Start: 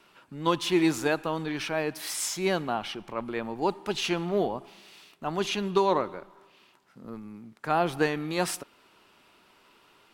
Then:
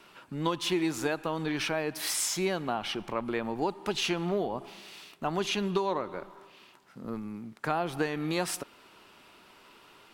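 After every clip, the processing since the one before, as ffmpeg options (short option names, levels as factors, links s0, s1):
-af "acompressor=threshold=0.0282:ratio=4,volume=1.58"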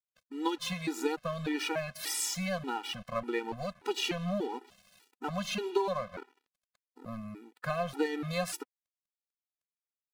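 -af "aeval=exprs='sgn(val(0))*max(abs(val(0))-0.00562,0)':c=same,afftfilt=real='re*gt(sin(2*PI*1.7*pts/sr)*(1-2*mod(floor(b*sr/1024/250),2)),0)':imag='im*gt(sin(2*PI*1.7*pts/sr)*(1-2*mod(floor(b*sr/1024/250),2)),0)':win_size=1024:overlap=0.75,volume=1.19"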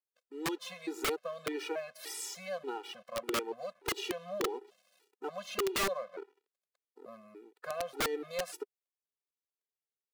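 -af "highpass=f=410:t=q:w=4.9,aeval=exprs='(mod(7.94*val(0)+1,2)-1)/7.94':c=same,volume=0.398"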